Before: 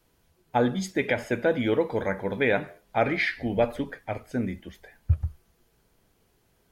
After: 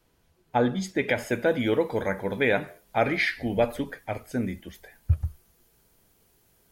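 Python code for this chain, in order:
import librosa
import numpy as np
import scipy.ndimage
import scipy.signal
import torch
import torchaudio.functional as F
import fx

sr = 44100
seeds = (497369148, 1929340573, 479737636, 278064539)

y = fx.high_shelf(x, sr, hz=6900.0, db=fx.steps((0.0, -3.0), (1.07, 11.0)))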